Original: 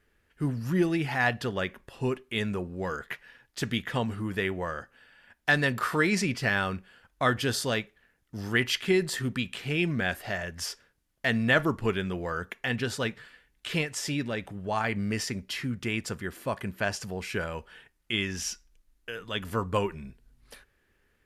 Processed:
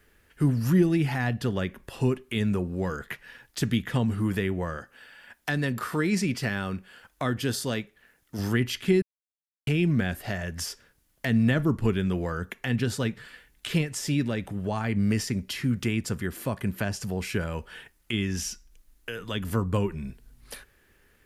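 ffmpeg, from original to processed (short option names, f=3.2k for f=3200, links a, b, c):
-filter_complex "[0:a]asettb=1/sr,asplit=3[a][b][c];[a]atrim=end=4.774[d];[b]atrim=start=4.77:end=8.39,asetpts=PTS-STARTPTS,afade=t=in:d=0.004:c=qsin,afade=t=out:st=3.616:d=0.004:c=qsin,lowshelf=f=170:g=-8[e];[c]atrim=start=8.386[f];[d][e]acrossfade=d=0.004:c1=hsin:c2=qsin[g];[g][f]acrossfade=d=0.004:c1=qsin:c2=hsin,asplit=3[h][i][j];[h]atrim=end=9.02,asetpts=PTS-STARTPTS,afade=t=out:st=9.016:d=0.004:c=hsin[k];[i]atrim=start=9.02:end=9.67,asetpts=PTS-STARTPTS,volume=0[l];[j]atrim=start=9.67,asetpts=PTS-STARTPTS,afade=t=in:d=0.004:c=hsin[m];[k][l][m]concat=n=3:v=0:a=1,highshelf=f=8.1k:g=8,acrossover=split=320[n][o];[o]acompressor=threshold=-43dB:ratio=2.5[p];[n][p]amix=inputs=2:normalize=0,volume=7dB"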